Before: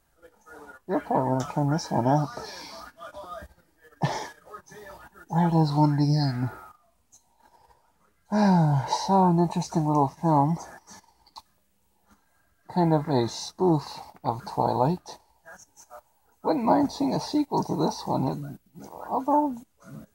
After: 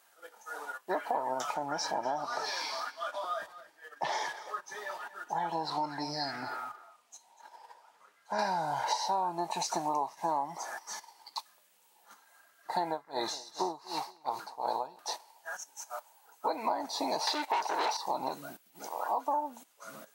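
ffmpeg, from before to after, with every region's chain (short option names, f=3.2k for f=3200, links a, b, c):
-filter_complex "[0:a]asettb=1/sr,asplit=3[a][b][c];[a]atrim=end=1.544[d];[b]atrim=start=1.54:end=8.39,asetpts=PTS-STARTPTS,afade=t=in:d=0.004:c=qsin,afade=t=out:st=6.846:d=0.004:c=qsin,highshelf=f=8.5k:g=-11.5,acompressor=threshold=-36dB:ratio=1.5:attack=3.2:release=140:knee=1:detection=peak,aecho=1:1:243:0.141,atrim=end_sample=302085[e];[c]atrim=start=8.386[f];[d][e]acrossfade=d=0.004:c1=hsin:c2=qsin[g];[g][f]acrossfade=d=0.004:c1=qsin:c2=hsin,asettb=1/sr,asplit=3[h][i][j];[h]atrim=end=12.894[k];[i]atrim=start=12.89:end=14.99,asetpts=PTS-STARTPTS,afade=t=in:d=0.004:c=qsin,afade=t=out:st=2.096:d=0.004:c=qsin,aecho=1:1:234|468|702|936:0.251|0.098|0.0382|0.0149,atrim=end_sample=92610,aeval=exprs='val(0)*pow(10,-22*(0.5-0.5*cos(2*PI*2.7*n/s))/20)':c=same[l];[j]atrim=start=14.986[m];[k][l]acrossfade=d=0.004:c1=hsin:c2=qsin[n];[n][m]acrossfade=d=0.004:c1=qsin:c2=hsin,asettb=1/sr,asplit=3[o][p][q];[o]atrim=end=17.274[r];[p]atrim=start=17.27:end=17.97,asetpts=PTS-STARTPTS,afade=t=in:d=0.004:c=qsin,afade=t=out:st=0.696:d=0.004:c=qsin,asplit=2[s][t];[t]highpass=f=720:p=1,volume=25dB,asoftclip=type=tanh:threshold=-11.5dB[u];[s][u]amix=inputs=2:normalize=0,lowpass=f=1.9k:p=1,volume=-6dB,equalizer=f=180:w=0.83:g=-11[v];[q]atrim=start=17.966[w];[r][v]acrossfade=d=0.004:c1=hsin:c2=qsin[x];[x][w]acrossfade=d=0.004:c1=qsin:c2=hsin,highpass=670,equalizer=f=3.1k:t=o:w=0.77:g=2,acompressor=threshold=-36dB:ratio=6,volume=7dB"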